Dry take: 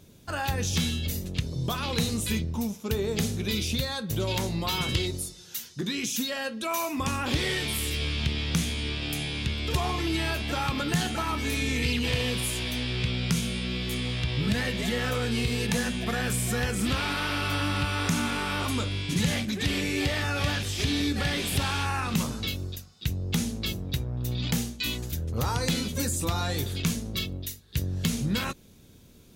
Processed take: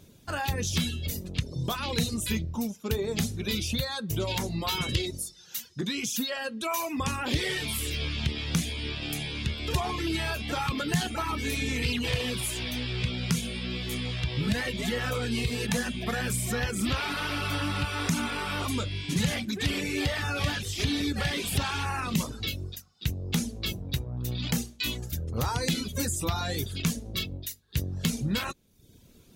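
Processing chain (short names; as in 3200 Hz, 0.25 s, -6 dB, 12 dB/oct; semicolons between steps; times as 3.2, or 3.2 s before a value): reverb removal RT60 0.72 s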